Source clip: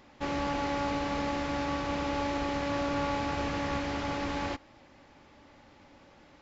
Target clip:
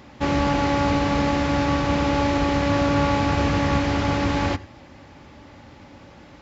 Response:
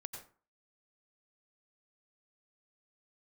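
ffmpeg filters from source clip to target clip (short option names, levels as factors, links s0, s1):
-filter_complex "[0:a]highpass=62,asplit=2[s0][s1];[s1]lowshelf=f=400:g=10[s2];[1:a]atrim=start_sample=2205,afade=t=out:st=0.14:d=0.01,atrim=end_sample=6615,lowshelf=f=200:g=9[s3];[s2][s3]afir=irnorm=-1:irlink=0,volume=0.596[s4];[s0][s4]amix=inputs=2:normalize=0,volume=2.11"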